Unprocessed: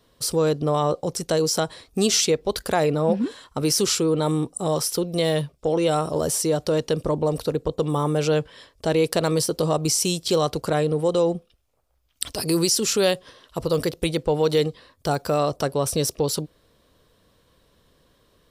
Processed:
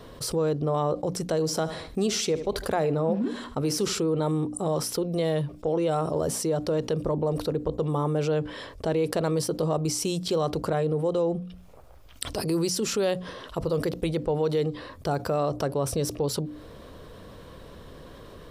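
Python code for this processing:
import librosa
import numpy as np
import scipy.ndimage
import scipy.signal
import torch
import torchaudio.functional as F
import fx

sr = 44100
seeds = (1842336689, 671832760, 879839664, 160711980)

y = fx.echo_feedback(x, sr, ms=75, feedback_pct=34, wet_db=-18.5, at=(1.29, 4.0))
y = fx.high_shelf(y, sr, hz=2400.0, db=-11.0)
y = fx.hum_notches(y, sr, base_hz=60, count=5)
y = fx.env_flatten(y, sr, amount_pct=50)
y = y * librosa.db_to_amplitude(-5.5)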